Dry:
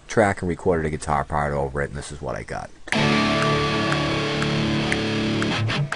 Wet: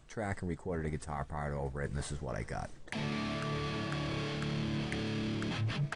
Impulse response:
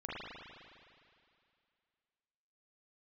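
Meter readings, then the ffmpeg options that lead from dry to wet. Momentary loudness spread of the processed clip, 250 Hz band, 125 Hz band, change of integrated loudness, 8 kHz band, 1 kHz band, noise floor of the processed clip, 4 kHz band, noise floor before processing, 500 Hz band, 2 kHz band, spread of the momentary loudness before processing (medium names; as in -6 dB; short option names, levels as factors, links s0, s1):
4 LU, -13.5 dB, -10.5 dB, -14.5 dB, -14.0 dB, -17.0 dB, -50 dBFS, -16.5 dB, -42 dBFS, -16.5 dB, -16.5 dB, 11 LU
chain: -af "areverse,acompressor=threshold=0.0398:ratio=6,areverse,bass=f=250:g=6,treble=f=4000:g=1,aecho=1:1:634|1268|1902:0.0708|0.034|0.0163,volume=0.398"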